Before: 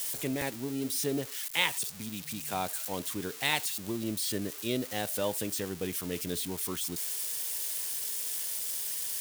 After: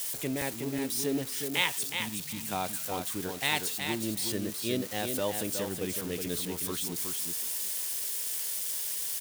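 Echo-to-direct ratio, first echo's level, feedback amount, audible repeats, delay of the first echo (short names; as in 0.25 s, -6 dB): -6.0 dB, -6.0 dB, 16%, 2, 0.368 s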